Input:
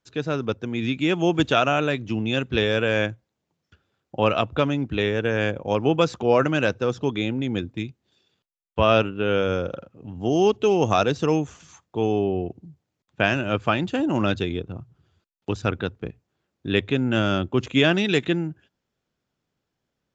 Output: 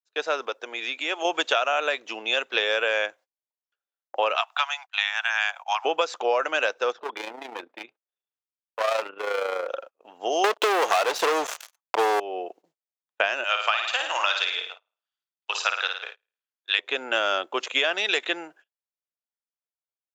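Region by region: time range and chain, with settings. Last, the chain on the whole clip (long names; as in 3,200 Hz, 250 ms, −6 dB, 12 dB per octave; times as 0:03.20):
0:00.46–0:01.25: linear-phase brick-wall high-pass 220 Hz + downward compressor 2 to 1, threshold −28 dBFS
0:04.35–0:05.85: Butterworth high-pass 720 Hz 72 dB per octave + high-shelf EQ 4,000 Hz +4 dB + one half of a high-frequency compander encoder only
0:06.92–0:09.69: low-pass filter 2,200 Hz + hard clipping −22 dBFS + amplitude modulation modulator 28 Hz, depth 40%
0:10.44–0:12.20: high-shelf EQ 5,200 Hz −6.5 dB + volume swells 104 ms + leveller curve on the samples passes 5
0:13.44–0:16.79: high-pass filter 940 Hz + parametric band 4,100 Hz +6 dB 2.2 octaves + flutter between parallel walls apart 9.3 metres, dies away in 0.56 s
whole clip: noise gate −42 dBFS, range −29 dB; high-pass filter 550 Hz 24 dB per octave; downward compressor 10 to 1, threshold −25 dBFS; level +6 dB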